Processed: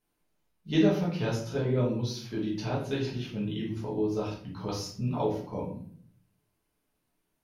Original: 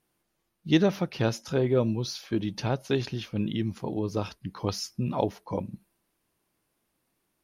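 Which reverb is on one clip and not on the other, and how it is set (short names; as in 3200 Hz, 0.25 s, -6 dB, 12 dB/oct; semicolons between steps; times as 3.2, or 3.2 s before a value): shoebox room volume 73 m³, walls mixed, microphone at 1.5 m; gain -10 dB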